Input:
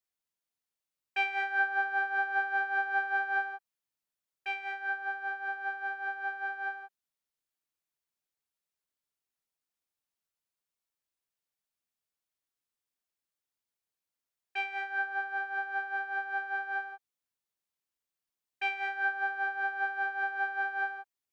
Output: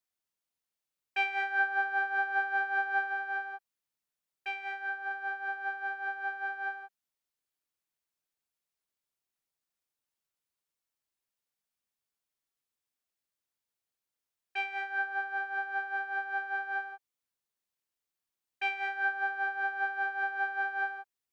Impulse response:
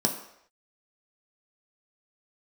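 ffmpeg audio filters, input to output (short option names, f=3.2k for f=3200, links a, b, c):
-filter_complex "[0:a]asettb=1/sr,asplit=3[a][b][c];[a]atrim=end=3.034[d];[b]atrim=start=3.03:end=5.11,asetpts=PTS-STARTPTS,afade=t=in:d=0.004:c=qsin,afade=t=out:st=2.076:d=0.004:c=qsin,acompressor=threshold=-31dB:ratio=6[e];[c]atrim=start=5.106[f];[d][e]acrossfade=d=0.004:c1=hsin:c2=qsin[g];[g][f]acrossfade=d=0.004:c1=qsin:c2=hsin"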